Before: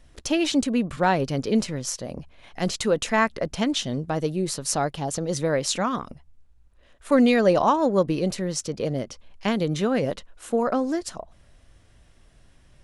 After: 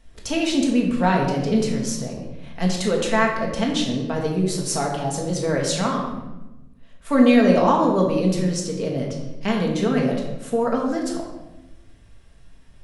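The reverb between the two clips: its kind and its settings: simulated room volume 460 m³, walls mixed, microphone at 1.6 m; trim -2 dB

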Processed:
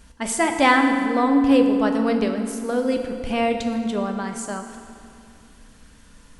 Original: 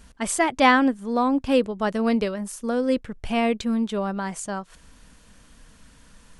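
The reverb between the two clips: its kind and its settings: FDN reverb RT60 2.5 s, low-frequency decay 1.25×, high-frequency decay 0.7×, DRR 4 dB

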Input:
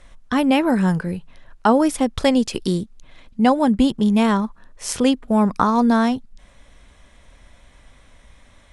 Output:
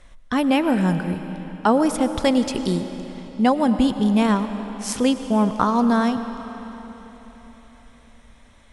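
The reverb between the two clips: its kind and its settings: algorithmic reverb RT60 4 s, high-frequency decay 0.85×, pre-delay 65 ms, DRR 9.5 dB; trim -2 dB

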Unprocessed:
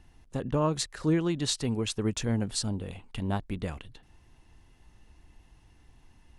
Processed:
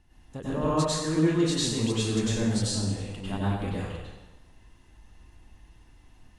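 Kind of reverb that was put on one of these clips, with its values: plate-style reverb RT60 1.1 s, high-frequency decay 0.85×, pre-delay 85 ms, DRR -8.5 dB; trim -6 dB

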